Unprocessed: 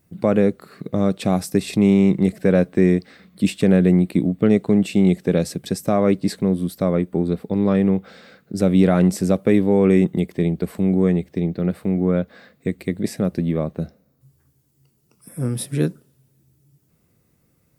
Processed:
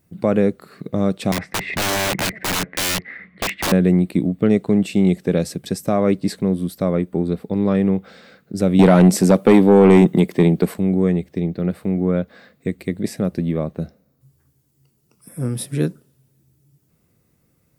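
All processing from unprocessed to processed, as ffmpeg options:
-filter_complex "[0:a]asettb=1/sr,asplit=3[a][b][c];[a]atrim=end=1.324[d];[b]atrim=start=1.32:end=3.72,asetpts=PTS-STARTPTS,afade=t=in:d=0.004:c=qsin,afade=t=out:st=2.396:d=0.004:c=qsin,lowpass=f=2k:t=q:w=9.7,aeval=exprs='(mod(6.31*val(0)+1,2)-1)/6.31':c=same[e];[c]atrim=start=3.716[f];[d][e]acrossfade=d=0.004:c1=hsin:c2=qsin[g];[g][f]acrossfade=d=0.004:c1=qsin:c2=hsin,asettb=1/sr,asplit=3[h][i][j];[h]atrim=end=8.794[k];[i]atrim=start=8.79:end=10.74,asetpts=PTS-STARTPTS,afade=t=in:d=0.004:c=qsin,afade=t=out:st=1.946:d=0.004:c=qsin,highpass=150,aeval=exprs='0.596*sin(PI/2*1.58*val(0)/0.596)':c=same[l];[j]atrim=start=10.736[m];[k][l]acrossfade=d=0.004:c1=hsin:c2=qsin[n];[n][m]acrossfade=d=0.004:c1=qsin:c2=hsin"

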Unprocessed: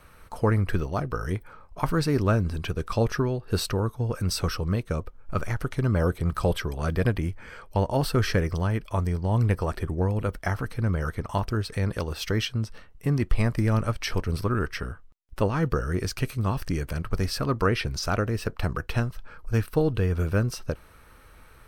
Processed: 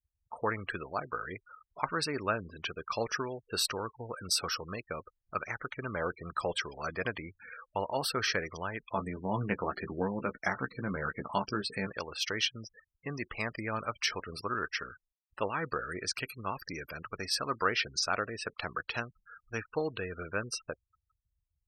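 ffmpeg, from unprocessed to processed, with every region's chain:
-filter_complex "[0:a]asettb=1/sr,asplit=3[a][b][c];[a]atrim=end=8.934[d];[b]atrim=start=8.93:end=11.87,asetpts=PTS-STARTPTS,afade=t=in:d=0.004:c=qsin,afade=t=out:st=2.936:d=0.004:c=qsin,equalizer=f=200:t=o:w=1.6:g=9.5,asplit=2[e][f];[f]adelay=15,volume=-6dB[g];[e][g]amix=inputs=2:normalize=0,atrim=end_sample=129654[h];[c]atrim=start=11.866[i];[d][h]acrossfade=d=0.004:c1=hsin:c2=qsin[j];[j][i]acrossfade=d=0.004:c1=qsin:c2=hsin,afftfilt=real='re*gte(hypot(re,im),0.0141)':imag='im*gte(hypot(re,im),0.0141)':win_size=1024:overlap=0.75,highpass=f=1.4k:p=1,volume=1.5dB"

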